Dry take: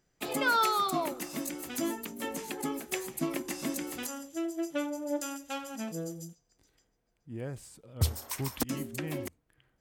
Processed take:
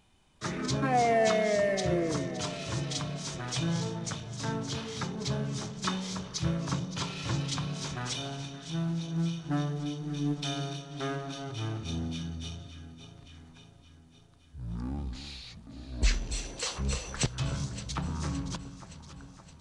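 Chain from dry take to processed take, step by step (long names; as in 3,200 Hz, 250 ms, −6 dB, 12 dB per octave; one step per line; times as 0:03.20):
mu-law and A-law mismatch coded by mu
change of speed 0.5×
delay that swaps between a low-pass and a high-pass 284 ms, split 1,300 Hz, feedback 76%, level −11 dB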